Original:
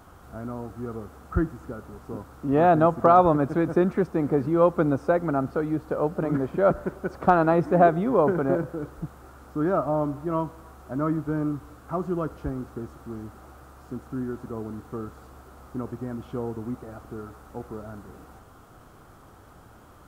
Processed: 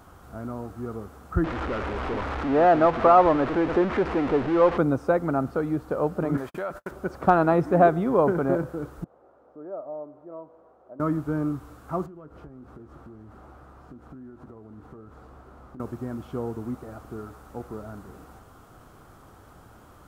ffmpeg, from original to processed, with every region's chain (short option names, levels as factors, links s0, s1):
-filter_complex "[0:a]asettb=1/sr,asplit=3[s0][s1][s2];[s0]atrim=end=1.444[s3];[s1]atrim=start=1.44:end=4.78,asetpts=PTS-STARTPTS,afade=t=in:d=0.004:c=qsin,afade=t=out:st=3.336:d=0.004:c=qsin,aeval=exprs='val(0)+0.5*0.0794*sgn(val(0))':c=same,lowpass=2200,equalizer=f=150:w=1:g=-10.5[s4];[s2]atrim=start=4.776[s5];[s3][s4]acrossfade=d=0.004:c1=hsin:c2=qsin[s6];[s6][s5]acrossfade=d=0.004:c1=qsin:c2=hsin,asettb=1/sr,asplit=3[s7][s8][s9];[s7]atrim=end=6.374[s10];[s8]atrim=start=6.37:end=6.91,asetpts=PTS-STARTPTS,afade=t=in:d=0.004:c=qsin,afade=t=out:st=0.536:d=0.004:c=qsin,agate=range=0.00282:threshold=0.0178:ratio=16:release=100:detection=peak,tiltshelf=f=710:g=-8,acompressor=threshold=0.0398:ratio=5:attack=3.2:release=140:knee=1:detection=peak[s11];[s9]atrim=start=6.906[s12];[s10][s11]acrossfade=d=0.004:c1=hsin:c2=qsin[s13];[s13][s12]acrossfade=d=0.004:c1=qsin:c2=hsin,asettb=1/sr,asplit=3[s14][s15][s16];[s14]atrim=end=9.044[s17];[s15]atrim=start=9.04:end=11,asetpts=PTS-STARTPTS,afade=t=in:d=0.004:c=qsin,afade=t=out:st=1.956:d=0.004:c=qsin,acompressor=threshold=0.00891:ratio=1.5:attack=3.2:release=140:knee=1:detection=peak,bandpass=f=550:t=q:w=2.6[s18];[s16]atrim=start=10.996[s19];[s17][s18]acrossfade=d=0.004:c1=hsin:c2=qsin[s20];[s20][s19]acrossfade=d=0.004:c1=qsin:c2=hsin,asettb=1/sr,asplit=3[s21][s22][s23];[s21]atrim=end=12.064[s24];[s22]atrim=start=12.06:end=15.8,asetpts=PTS-STARTPTS,afade=t=in:d=0.004:c=qsin,afade=t=out:st=3.736:d=0.004:c=qsin,lowpass=f=1800:p=1,acompressor=threshold=0.01:ratio=20:attack=3.2:release=140:knee=1:detection=peak,asplit=2[s25][s26];[s26]adelay=20,volume=0.224[s27];[s25][s27]amix=inputs=2:normalize=0,atrim=end_sample=164934[s28];[s23]atrim=start=15.796[s29];[s24][s28]acrossfade=d=0.004:c1=hsin:c2=qsin[s30];[s30][s29]acrossfade=d=0.004:c1=qsin:c2=hsin"